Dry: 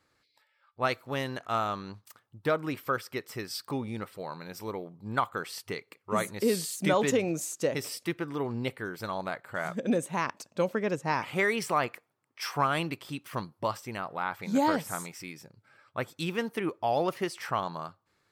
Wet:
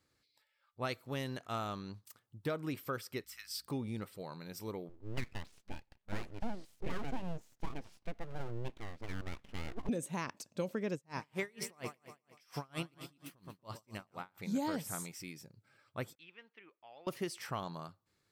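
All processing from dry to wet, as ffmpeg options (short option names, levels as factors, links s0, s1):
-filter_complex "[0:a]asettb=1/sr,asplit=3[s0][s1][s2];[s0]atrim=end=3.244[s3];[s1]atrim=start=3.24:end=3.67,asetpts=PTS-STARTPTS,afade=t=in:d=0.004:c=qsin,afade=t=out:st=0.426:d=0.004:c=qsin,aeval=exprs='if(lt(val(0),0),0.708*val(0),val(0))':c=same,highpass=f=1300:w=0.5412,highpass=f=1300:w=1.3066,aeval=exprs='val(0)+0.000224*(sin(2*PI*60*n/s)+sin(2*PI*2*60*n/s)/2+sin(2*PI*3*60*n/s)/3+sin(2*PI*4*60*n/s)/4+sin(2*PI*5*60*n/s)/5)':c=same[s4];[s2]atrim=start=3.666[s5];[s3][s4]acrossfade=d=0.004:c1=hsin:c2=qsin[s6];[s6][s5]acrossfade=d=0.004:c1=qsin:c2=hsin,asettb=1/sr,asplit=3[s7][s8][s9];[s7]atrim=end=4.894[s10];[s8]atrim=start=4.89:end=9.89,asetpts=PTS-STARTPTS,afade=t=in:d=0.004:c=qsin,afade=t=out:st=4.996:d=0.004:c=qsin,lowpass=1500,aeval=exprs='abs(val(0))':c=same[s11];[s9]atrim=start=9.886[s12];[s10][s11]acrossfade=d=0.004:c1=hsin:c2=qsin[s13];[s13][s12]acrossfade=d=0.004:c1=qsin:c2=hsin,asettb=1/sr,asplit=3[s14][s15][s16];[s14]atrim=end=10.944[s17];[s15]atrim=start=10.94:end=14.38,asetpts=PTS-STARTPTS,afade=t=in:d=0.004:c=qsin,afade=t=out:st=3.436:d=0.004:c=qsin,aecho=1:1:118|236|354|472|590|708|826:0.282|0.166|0.0981|0.0579|0.0342|0.0201|0.0119,atrim=end_sample=151704,aeval=exprs='val(0)*pow(10,-33*(0.5-0.5*cos(2*PI*4.3*n/s))/20)':c=same[s18];[s16]atrim=start=14.376[s19];[s17][s18]acrossfade=d=0.004:c1=hsin:c2=qsin[s20];[s20][s19]acrossfade=d=0.004:c1=qsin:c2=hsin,asettb=1/sr,asplit=3[s21][s22][s23];[s21]atrim=end=16.154[s24];[s22]atrim=start=16.15:end=17.07,asetpts=PTS-STARTPTS,afade=t=in:d=0.004:c=qsin,afade=t=out:st=0.916:d=0.004:c=qsin,lowpass=f=2600:w=0.5412,lowpass=f=2600:w=1.3066,aderivative[s25];[s23]atrim=start=17.066[s26];[s24][s25]acrossfade=d=0.004:c1=hsin:c2=qsin[s27];[s27][s26]acrossfade=d=0.004:c1=qsin:c2=hsin,equalizer=f=1100:t=o:w=2.7:g=-8,acompressor=threshold=0.0316:ratio=3,volume=0.794"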